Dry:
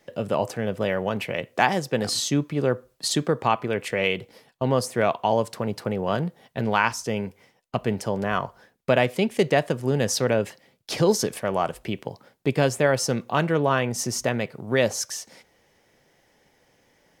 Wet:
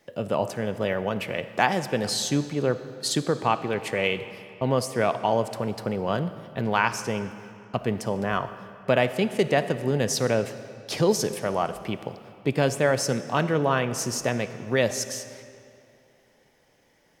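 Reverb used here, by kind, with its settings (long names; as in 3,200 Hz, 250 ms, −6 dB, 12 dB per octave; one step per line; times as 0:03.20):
comb and all-pass reverb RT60 2.6 s, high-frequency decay 0.8×, pre-delay 15 ms, DRR 12 dB
level −1.5 dB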